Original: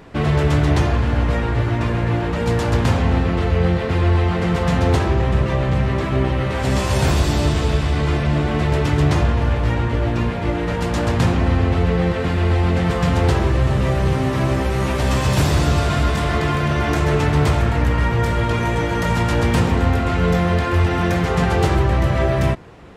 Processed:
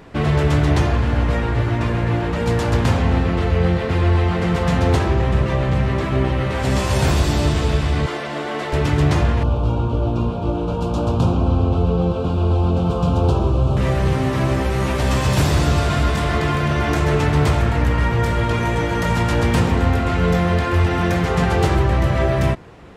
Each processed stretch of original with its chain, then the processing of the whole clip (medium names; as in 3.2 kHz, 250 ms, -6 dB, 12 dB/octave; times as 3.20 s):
8.06–8.73 s: high-pass 380 Hz + band-stop 2.5 kHz, Q 15
9.43–13.77 s: Butterworth band-stop 1.9 kHz, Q 1.3 + treble shelf 3.6 kHz -10.5 dB
whole clip: none